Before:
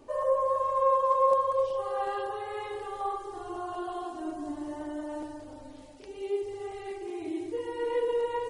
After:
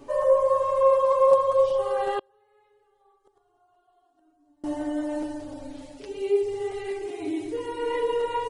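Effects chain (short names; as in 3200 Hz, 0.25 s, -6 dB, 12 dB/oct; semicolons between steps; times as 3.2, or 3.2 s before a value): comb 7.1 ms, depth 73%; 2.19–4.64 flipped gate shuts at -30 dBFS, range -35 dB; gain +4.5 dB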